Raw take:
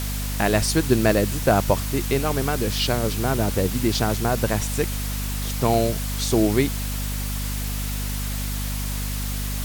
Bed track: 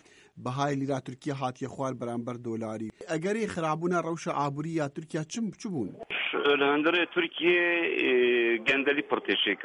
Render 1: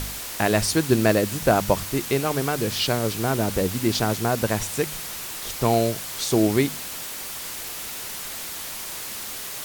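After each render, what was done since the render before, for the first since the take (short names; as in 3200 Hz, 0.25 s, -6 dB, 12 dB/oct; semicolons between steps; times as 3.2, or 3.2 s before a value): de-hum 50 Hz, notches 5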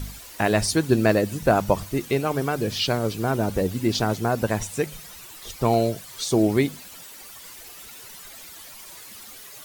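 denoiser 12 dB, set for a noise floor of -34 dBFS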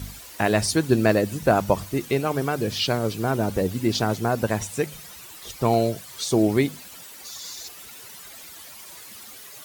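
HPF 50 Hz; 7.25–7.68 spectral gain 3400–7400 Hz +11 dB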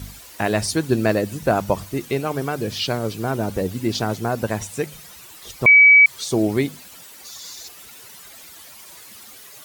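5.66–6.06 bleep 2280 Hz -6.5 dBFS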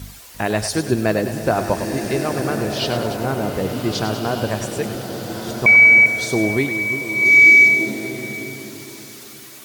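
on a send: split-band echo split 490 Hz, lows 0.346 s, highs 0.101 s, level -9.5 dB; on the sum: bloom reverb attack 1.6 s, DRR 5 dB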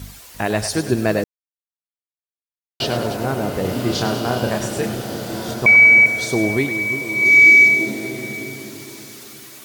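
1.24–2.8 mute; 3.61–5.54 doubler 33 ms -4 dB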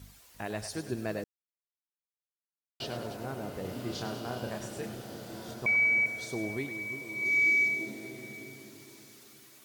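gain -16 dB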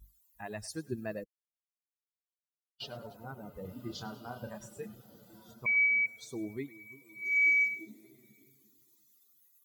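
per-bin expansion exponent 2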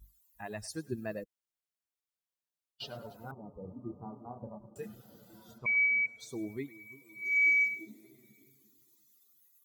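3.31–4.76 rippled Chebyshev low-pass 1200 Hz, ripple 3 dB; 5.58–6.2 air absorption 68 m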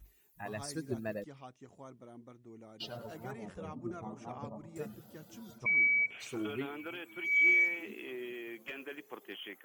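add bed track -19 dB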